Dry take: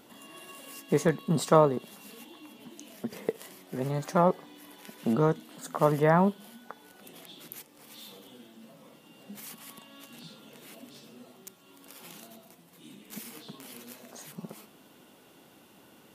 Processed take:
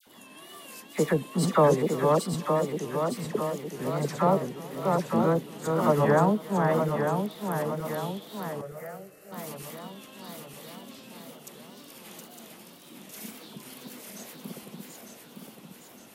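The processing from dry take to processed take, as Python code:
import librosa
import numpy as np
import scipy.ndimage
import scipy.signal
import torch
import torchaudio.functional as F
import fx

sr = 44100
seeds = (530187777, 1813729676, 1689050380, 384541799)

y = fx.reverse_delay_fb(x, sr, ms=455, feedback_pct=73, wet_db=-3.0)
y = fx.dispersion(y, sr, late='lows', ms=72.0, hz=1300.0)
y = fx.fixed_phaser(y, sr, hz=960.0, stages=6, at=(8.61, 9.32))
y = y + 10.0 ** (-21.5 / 20.0) * np.pad(y, (int(367 * sr / 1000.0), 0))[:len(y)]
y = fx.wow_flutter(y, sr, seeds[0], rate_hz=2.1, depth_cents=99.0)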